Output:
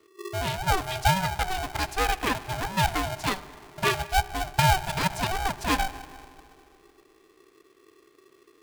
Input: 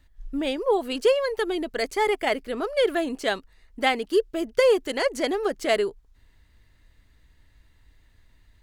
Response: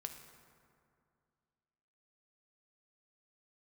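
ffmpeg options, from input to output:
-filter_complex "[0:a]asplit=2[a][b];[1:a]atrim=start_sample=2205[c];[b][c]afir=irnorm=-1:irlink=0,volume=1dB[d];[a][d]amix=inputs=2:normalize=0,aeval=exprs='val(0)*sgn(sin(2*PI*380*n/s))':c=same,volume=-7dB"

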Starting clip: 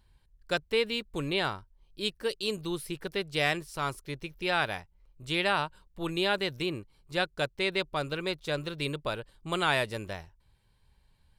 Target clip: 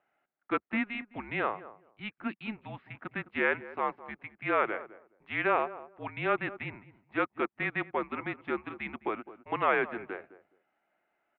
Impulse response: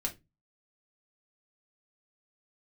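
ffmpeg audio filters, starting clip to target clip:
-filter_complex "[0:a]asplit=2[a][b];[b]adelay=209,lowpass=f=920:p=1,volume=-13.5dB,asplit=2[c][d];[d]adelay=209,lowpass=f=920:p=1,volume=0.21[e];[a][c][e]amix=inputs=3:normalize=0,highpass=f=530:t=q:w=0.5412,highpass=f=530:t=q:w=1.307,lowpass=f=2.5k:t=q:w=0.5176,lowpass=f=2.5k:t=q:w=0.7071,lowpass=f=2.5k:t=q:w=1.932,afreqshift=-220,volume=2dB"

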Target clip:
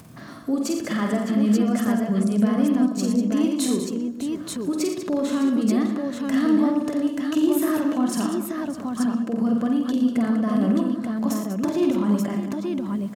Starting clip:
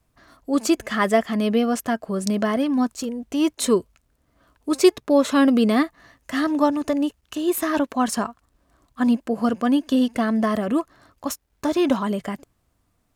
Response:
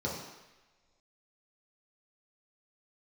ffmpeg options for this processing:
-filter_complex "[0:a]highpass=120,equalizer=f=180:w=0.87:g=13,acompressor=threshold=-15dB:ratio=6,alimiter=limit=-17.5dB:level=0:latency=1:release=206,acompressor=mode=upward:threshold=-33dB:ratio=2.5,aecho=1:1:48|87|113|194|608|882:0.596|0.316|0.316|0.299|0.211|0.631,asplit=2[a][b];[1:a]atrim=start_sample=2205,asetrate=52920,aresample=44100,adelay=125[c];[b][c]afir=irnorm=-1:irlink=0,volume=-20.5dB[d];[a][d]amix=inputs=2:normalize=0"

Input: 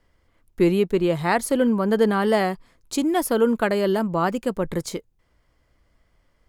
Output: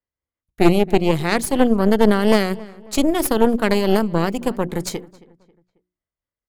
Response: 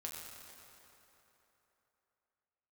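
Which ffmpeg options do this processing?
-filter_complex "[0:a]agate=range=-30dB:threshold=-53dB:ratio=16:detection=peak,highpass=42,bandreject=f=60:t=h:w=6,bandreject=f=120:t=h:w=6,bandreject=f=180:t=h:w=6,bandreject=f=240:t=h:w=6,bandreject=f=300:t=h:w=6,bandreject=f=360:t=h:w=6,acrossover=split=530|1900[a][b][c];[b]acompressor=threshold=-37dB:ratio=6[d];[a][d][c]amix=inputs=3:normalize=0,tremolo=f=4.3:d=0.31,aeval=exprs='0.335*(cos(1*acos(clip(val(0)/0.335,-1,1)))-cos(1*PI/2))+0.106*(cos(4*acos(clip(val(0)/0.335,-1,1)))-cos(4*PI/2))':c=same,asplit=2[e][f];[f]adelay=271,lowpass=f=2.7k:p=1,volume=-21dB,asplit=2[g][h];[h]adelay=271,lowpass=f=2.7k:p=1,volume=0.42,asplit=2[i][j];[j]adelay=271,lowpass=f=2.7k:p=1,volume=0.42[k];[g][i][k]amix=inputs=3:normalize=0[l];[e][l]amix=inputs=2:normalize=0,volume=5dB"

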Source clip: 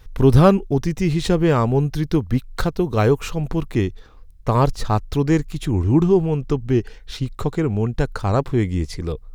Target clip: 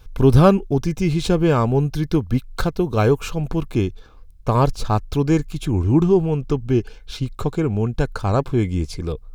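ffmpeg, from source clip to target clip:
-af "asuperstop=centerf=1900:order=20:qfactor=7.1"

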